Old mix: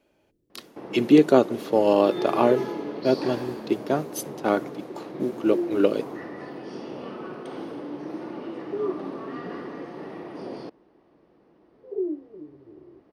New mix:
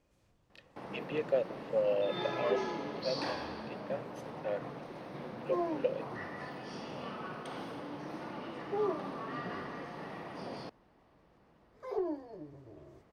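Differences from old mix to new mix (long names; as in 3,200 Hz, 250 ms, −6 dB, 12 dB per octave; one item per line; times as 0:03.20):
speech: add formant filter e
second sound: remove transistor ladder low-pass 510 Hz, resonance 25%
master: add parametric band 350 Hz −12.5 dB 1.1 octaves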